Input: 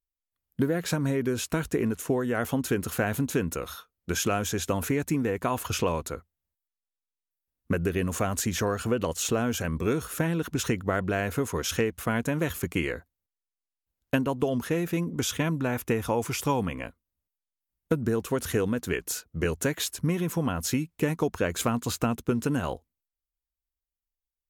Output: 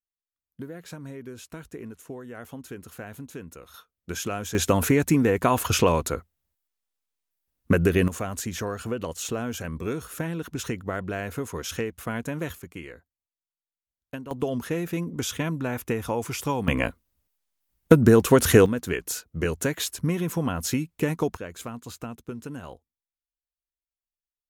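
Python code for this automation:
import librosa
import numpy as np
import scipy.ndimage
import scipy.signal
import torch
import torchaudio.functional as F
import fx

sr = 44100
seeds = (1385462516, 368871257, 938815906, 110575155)

y = fx.gain(x, sr, db=fx.steps((0.0, -12.5), (3.74, -4.0), (4.55, 6.5), (8.08, -3.5), (12.55, -11.5), (14.31, -1.0), (16.68, 11.0), (18.66, 1.0), (21.37, -10.0)))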